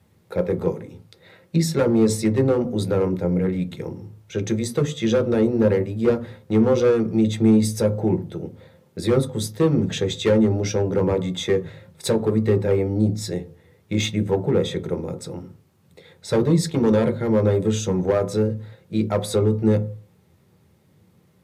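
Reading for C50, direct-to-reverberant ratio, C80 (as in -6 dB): 16.5 dB, 6.0 dB, 21.0 dB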